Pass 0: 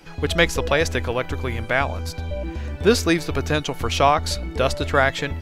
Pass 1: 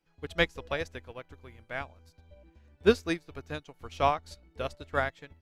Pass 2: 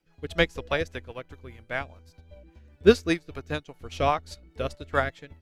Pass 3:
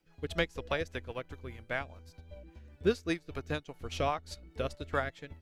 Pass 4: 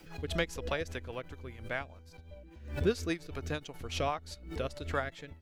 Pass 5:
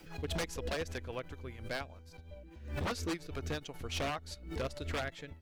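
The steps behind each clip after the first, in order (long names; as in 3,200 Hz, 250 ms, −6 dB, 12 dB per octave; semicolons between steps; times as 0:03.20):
expander for the loud parts 2.5 to 1, over −29 dBFS; level −4 dB
rotating-speaker cabinet horn 5 Hz; level +7 dB
downward compressor 2 to 1, threshold −33 dBFS, peak gain reduction 13 dB
background raised ahead of every attack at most 96 dB per second; level −1.5 dB
wave folding −29 dBFS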